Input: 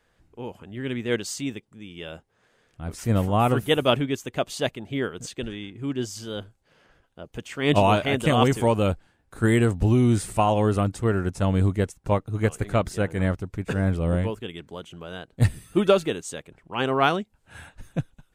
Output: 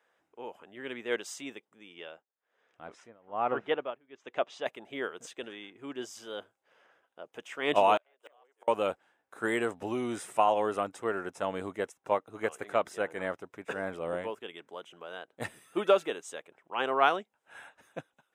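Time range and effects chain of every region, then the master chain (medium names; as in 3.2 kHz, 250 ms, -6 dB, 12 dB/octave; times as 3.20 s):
1.94–4.66 s: low-pass 6 kHz + low-pass that closes with the level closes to 2.2 kHz, closed at -19 dBFS + tremolo 1.2 Hz, depth 97%
7.97–8.68 s: de-esser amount 90% + high-pass 420 Hz 24 dB/octave + inverted gate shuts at -20 dBFS, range -36 dB
whole clip: high-pass 540 Hz 12 dB/octave; treble shelf 2.8 kHz -9.5 dB; band-stop 4.4 kHz, Q 6.5; trim -1 dB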